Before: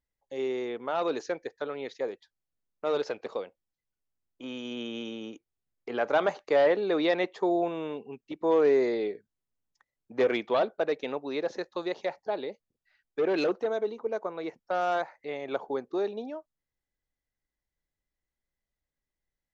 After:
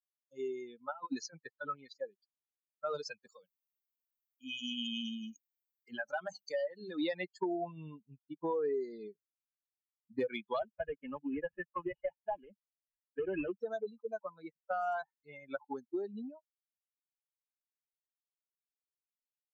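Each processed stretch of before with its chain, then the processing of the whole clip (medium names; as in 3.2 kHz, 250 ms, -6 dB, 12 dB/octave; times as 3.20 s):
0.91–1.76 s: low-pass 5.5 kHz + compressor with a negative ratio -32 dBFS, ratio -0.5
3.27–7.02 s: treble shelf 4.2 kHz +6.5 dB + hum notches 50/100/150/200/250 Hz + compression 2:1, threshold -32 dBFS
10.59–13.58 s: CVSD coder 16 kbps + three bands compressed up and down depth 40%
whole clip: expander on every frequency bin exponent 3; compression 6:1, threshold -43 dBFS; trim +9.5 dB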